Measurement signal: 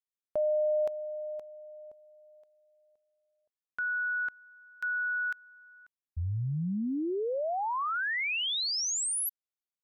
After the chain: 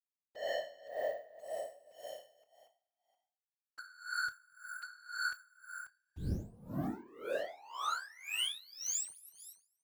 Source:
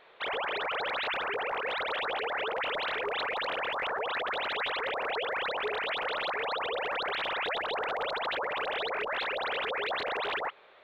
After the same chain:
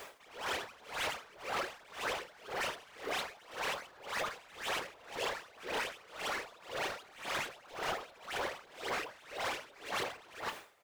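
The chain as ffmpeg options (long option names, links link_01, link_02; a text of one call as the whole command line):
ffmpeg -i in.wav -filter_complex "[0:a]highpass=99,equalizer=frequency=4100:width_type=o:width=0.28:gain=-6,asplit=2[link_01][link_02];[link_02]acompressor=threshold=-46dB:ratio=12:attack=0.15:release=51:knee=6:detection=rms,volume=-3dB[link_03];[link_01][link_03]amix=inputs=2:normalize=0,asoftclip=type=hard:threshold=-35.5dB,aresample=32000,aresample=44100,acrusher=bits=8:mix=0:aa=0.000001,asoftclip=type=tanh:threshold=-37dB,afftfilt=real='hypot(re,im)*cos(2*PI*random(0))':imag='hypot(re,im)*sin(2*PI*random(1))':win_size=512:overlap=0.75,asplit=2[link_04][link_05];[link_05]adelay=27,volume=-13.5dB[link_06];[link_04][link_06]amix=inputs=2:normalize=0,asplit=2[link_07][link_08];[link_08]asplit=4[link_09][link_10][link_11][link_12];[link_09]adelay=236,afreqshift=34,volume=-18.5dB[link_13];[link_10]adelay=472,afreqshift=68,volume=-24.5dB[link_14];[link_11]adelay=708,afreqshift=102,volume=-30.5dB[link_15];[link_12]adelay=944,afreqshift=136,volume=-36.6dB[link_16];[link_13][link_14][link_15][link_16]amix=inputs=4:normalize=0[link_17];[link_07][link_17]amix=inputs=2:normalize=0,aeval=exprs='val(0)*pow(10,-24*(0.5-0.5*cos(2*PI*1.9*n/s))/20)':channel_layout=same,volume=11.5dB" out.wav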